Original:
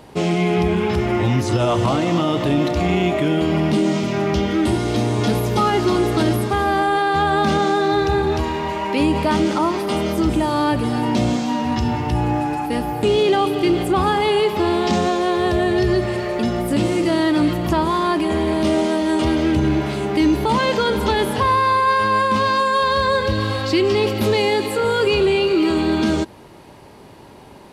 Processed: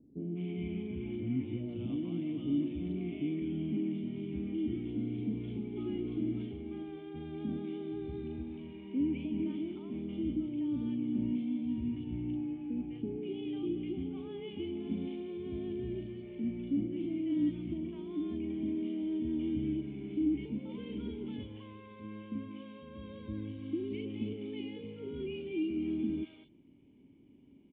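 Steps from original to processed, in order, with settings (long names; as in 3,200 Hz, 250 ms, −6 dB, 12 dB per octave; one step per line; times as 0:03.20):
formant resonators in series i
three-band delay without the direct sound lows, mids, highs 200/240 ms, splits 650/3,100 Hz
level −8.5 dB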